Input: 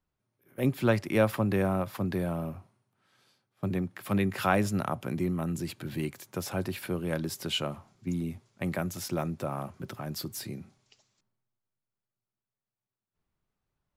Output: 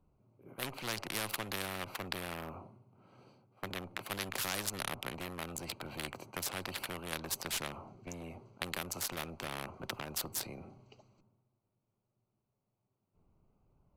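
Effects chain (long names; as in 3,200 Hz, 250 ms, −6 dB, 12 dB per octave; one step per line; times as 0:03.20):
adaptive Wiener filter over 25 samples
tube saturation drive 19 dB, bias 0.45
every bin compressed towards the loudest bin 4 to 1
level +2.5 dB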